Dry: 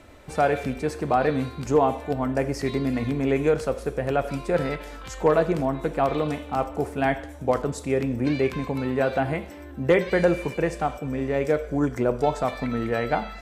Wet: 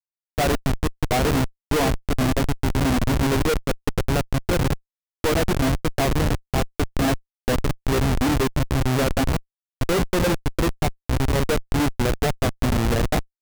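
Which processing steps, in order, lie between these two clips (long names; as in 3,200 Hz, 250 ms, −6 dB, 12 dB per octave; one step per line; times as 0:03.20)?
dynamic equaliser 250 Hz, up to +4 dB, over −36 dBFS, Q 2.5
comparator with hysteresis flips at −21 dBFS
level +4.5 dB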